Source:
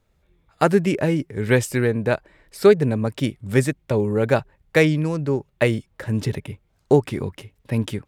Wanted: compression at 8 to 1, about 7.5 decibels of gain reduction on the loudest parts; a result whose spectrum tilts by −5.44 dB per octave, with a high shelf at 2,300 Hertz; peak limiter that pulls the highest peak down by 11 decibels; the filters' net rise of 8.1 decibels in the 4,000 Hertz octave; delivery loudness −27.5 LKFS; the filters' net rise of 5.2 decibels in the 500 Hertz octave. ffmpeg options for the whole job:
ffmpeg -i in.wav -af "equalizer=frequency=500:width_type=o:gain=6,highshelf=frequency=2300:gain=7.5,equalizer=frequency=4000:width_type=o:gain=3.5,acompressor=threshold=-12dB:ratio=8,volume=-4dB,alimiter=limit=-15.5dB:level=0:latency=1" out.wav

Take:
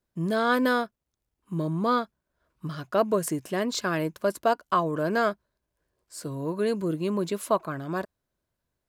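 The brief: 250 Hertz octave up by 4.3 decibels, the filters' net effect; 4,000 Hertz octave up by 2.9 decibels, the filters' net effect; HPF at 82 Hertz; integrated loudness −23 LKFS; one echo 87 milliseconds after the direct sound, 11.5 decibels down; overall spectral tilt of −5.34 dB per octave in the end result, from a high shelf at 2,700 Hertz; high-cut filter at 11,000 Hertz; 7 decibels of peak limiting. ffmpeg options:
ffmpeg -i in.wav -af "highpass=82,lowpass=11000,equalizer=frequency=250:width_type=o:gain=5.5,highshelf=frequency=2700:gain=-4.5,equalizer=frequency=4000:width_type=o:gain=7,alimiter=limit=-16.5dB:level=0:latency=1,aecho=1:1:87:0.266,volume=4.5dB" out.wav

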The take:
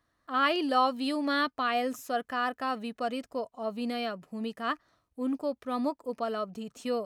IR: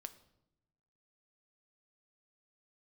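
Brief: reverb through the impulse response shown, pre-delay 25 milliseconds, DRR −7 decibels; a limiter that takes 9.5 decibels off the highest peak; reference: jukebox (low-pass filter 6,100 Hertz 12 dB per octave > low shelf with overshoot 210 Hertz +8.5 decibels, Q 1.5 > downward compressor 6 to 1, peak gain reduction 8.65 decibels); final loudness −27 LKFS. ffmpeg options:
-filter_complex "[0:a]alimiter=limit=-22.5dB:level=0:latency=1,asplit=2[link_01][link_02];[1:a]atrim=start_sample=2205,adelay=25[link_03];[link_02][link_03]afir=irnorm=-1:irlink=0,volume=12dB[link_04];[link_01][link_04]amix=inputs=2:normalize=0,lowpass=6100,lowshelf=frequency=210:width_type=q:width=1.5:gain=8.5,acompressor=threshold=-27dB:ratio=6,volume=4.5dB"

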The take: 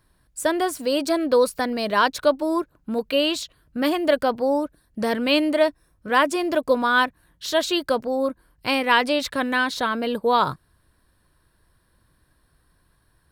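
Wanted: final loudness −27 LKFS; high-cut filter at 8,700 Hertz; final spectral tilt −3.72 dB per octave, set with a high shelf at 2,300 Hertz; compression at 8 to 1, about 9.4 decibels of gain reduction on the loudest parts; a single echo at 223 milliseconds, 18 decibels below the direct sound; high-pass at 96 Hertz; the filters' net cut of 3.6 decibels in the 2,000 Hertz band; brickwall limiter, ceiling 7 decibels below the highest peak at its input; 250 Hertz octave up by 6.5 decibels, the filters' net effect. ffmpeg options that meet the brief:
ffmpeg -i in.wav -af "highpass=96,lowpass=8700,equalizer=frequency=250:width_type=o:gain=8,equalizer=frequency=2000:width_type=o:gain=-8,highshelf=frequency=2300:gain=5,acompressor=threshold=-21dB:ratio=8,alimiter=limit=-19dB:level=0:latency=1,aecho=1:1:223:0.126,volume=1dB" out.wav

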